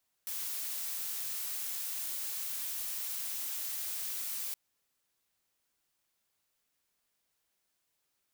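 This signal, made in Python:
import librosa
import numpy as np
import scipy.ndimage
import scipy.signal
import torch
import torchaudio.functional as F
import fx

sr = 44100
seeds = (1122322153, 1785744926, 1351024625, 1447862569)

y = fx.noise_colour(sr, seeds[0], length_s=4.27, colour='blue', level_db=-37.5)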